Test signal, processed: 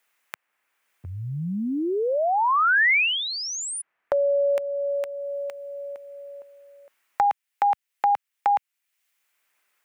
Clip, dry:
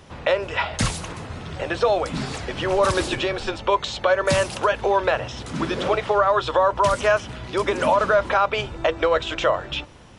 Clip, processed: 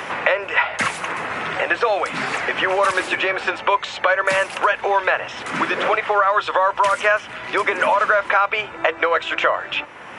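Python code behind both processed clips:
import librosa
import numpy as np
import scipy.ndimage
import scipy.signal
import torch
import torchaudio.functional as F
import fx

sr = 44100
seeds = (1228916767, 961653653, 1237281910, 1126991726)

y = fx.highpass(x, sr, hz=1500.0, slope=6)
y = fx.high_shelf_res(y, sr, hz=3000.0, db=-9.5, q=1.5)
y = fx.band_squash(y, sr, depth_pct=70)
y = y * librosa.db_to_amplitude(7.5)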